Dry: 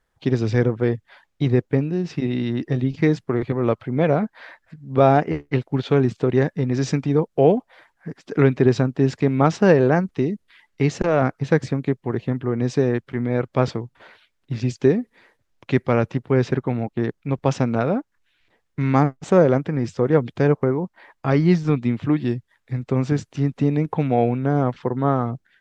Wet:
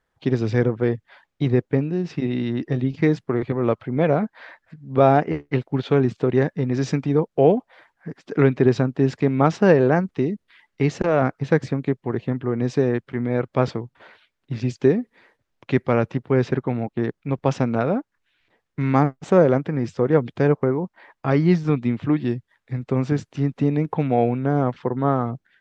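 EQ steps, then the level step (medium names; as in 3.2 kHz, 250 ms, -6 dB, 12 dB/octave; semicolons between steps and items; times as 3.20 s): bass shelf 60 Hz -8 dB; treble shelf 6.3 kHz -8.5 dB; 0.0 dB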